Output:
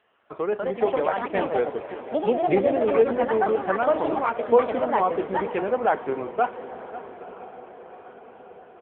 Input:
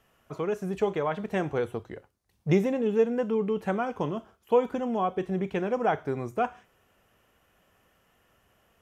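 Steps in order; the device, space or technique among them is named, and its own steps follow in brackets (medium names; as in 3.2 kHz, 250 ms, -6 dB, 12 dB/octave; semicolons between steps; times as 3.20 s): 0.96–2.49 s: dynamic bell 1.1 kHz, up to -4 dB, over -49 dBFS, Q 3.9; echo that smears into a reverb 951 ms, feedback 59%, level -15 dB; ever faster or slower copies 279 ms, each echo +4 st, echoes 2; satellite phone (band-pass 330–3300 Hz; delay 541 ms -15.5 dB; trim +5.5 dB; AMR-NB 6.7 kbps 8 kHz)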